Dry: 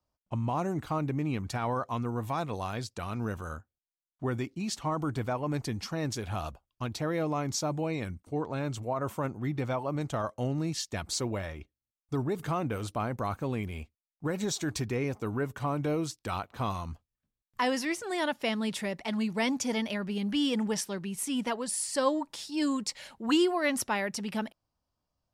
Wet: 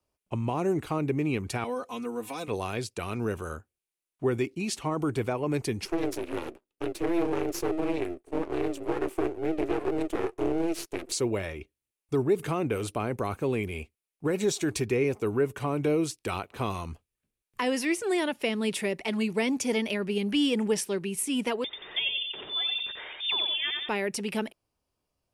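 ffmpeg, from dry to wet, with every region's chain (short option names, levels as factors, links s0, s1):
-filter_complex "[0:a]asettb=1/sr,asplit=3[s0][s1][s2];[s0]atrim=end=1.644[s3];[s1]atrim=start=1.64:end=2.48,asetpts=PTS-STARTPTS,afade=t=in:d=0.004:c=qsin,afade=t=out:st=0.836:d=0.004:c=qsin,lowshelf=f=330:g=-12,acrossover=split=470|3000[s4][s5][s6];[s5]acompressor=threshold=0.00316:ratio=2:attack=3.2:release=140:knee=2.83:detection=peak[s7];[s4][s7][s6]amix=inputs=3:normalize=0,aecho=1:1:4:0.98,atrim=end_sample=37044[s8];[s2]atrim=start=2.476[s9];[s3][s8]acrossfade=d=0.004:c1=hsin:c2=qsin[s10];[s10][s9]acrossfade=d=0.004:c1=qsin:c2=hsin,asettb=1/sr,asplit=3[s11][s12][s13];[s11]atrim=end=5.854[s14];[s12]atrim=start=5.85:end=11.12,asetpts=PTS-STARTPTS,afade=t=in:d=0.004:c=qsin,afade=t=out:st=5.266:d=0.004:c=qsin,aeval=exprs='val(0)*sin(2*PI*170*n/s)':c=same,highpass=f=330:t=q:w=3.6,aeval=exprs='max(val(0),0)':c=same[s15];[s13]atrim=start=11.116[s16];[s14][s15]acrossfade=d=0.004:c1=hsin:c2=qsin[s17];[s17][s16]acrossfade=d=0.004:c1=qsin:c2=hsin,asettb=1/sr,asplit=3[s18][s19][s20];[s18]atrim=end=21.644[s21];[s19]atrim=start=21.64:end=23.89,asetpts=PTS-STARTPTS,afade=t=in:d=0.004:c=qsin,afade=t=out:st=2.246:d=0.004:c=qsin,lowpass=f=3200:t=q:w=0.5098,lowpass=f=3200:t=q:w=0.6013,lowpass=f=3200:t=q:w=0.9,lowpass=f=3200:t=q:w=2.563,afreqshift=-3800,aecho=1:1:89|178|267|356:0.562|0.157|0.0441|0.0123,atrim=end_sample=99225,acompressor=mode=upward:threshold=0.0126:ratio=2.5:attack=3.2:release=140:knee=2.83:detection=peak[s22];[s20]atrim=start=23.886[s23];[s21][s22]acrossfade=d=0.004:c1=hsin:c2=qsin[s24];[s24][s23]acrossfade=d=0.004:c1=qsin:c2=hsin,equalizer=f=400:t=o:w=0.67:g=10,equalizer=f=2500:t=o:w=0.67:g=8,equalizer=f=10000:t=o:w=0.67:g=9,acrossover=split=440[s25][s26];[s26]acompressor=threshold=0.0398:ratio=4[s27];[s25][s27]amix=inputs=2:normalize=0"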